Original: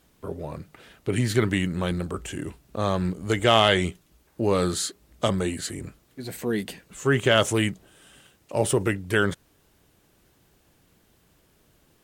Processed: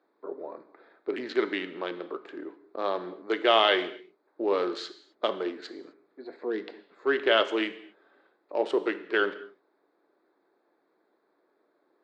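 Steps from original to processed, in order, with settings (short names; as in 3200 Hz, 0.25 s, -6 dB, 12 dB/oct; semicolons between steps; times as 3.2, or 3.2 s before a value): Wiener smoothing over 15 samples; elliptic band-pass 330–4300 Hz, stop band 50 dB; non-linear reverb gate 0.28 s falling, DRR 10.5 dB; gain -2 dB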